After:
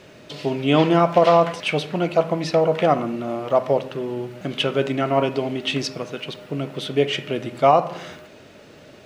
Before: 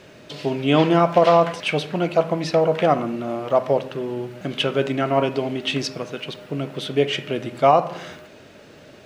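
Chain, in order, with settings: band-stop 1.6 kHz, Q 27

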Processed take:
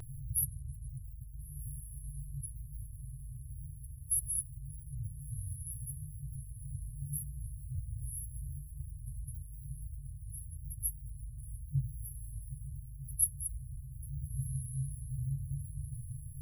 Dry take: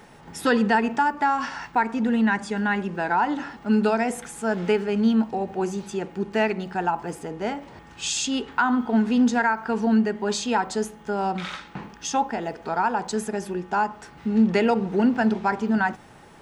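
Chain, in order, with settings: echo that smears into a reverb 1396 ms, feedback 41%, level -14.5 dB; FFT band-reject 150–10000 Hz; vibrato 0.86 Hz 33 cents; trim +14 dB

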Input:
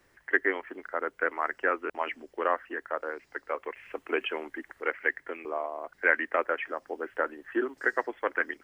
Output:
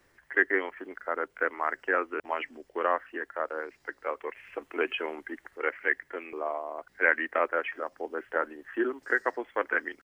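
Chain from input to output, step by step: tempo 0.86×

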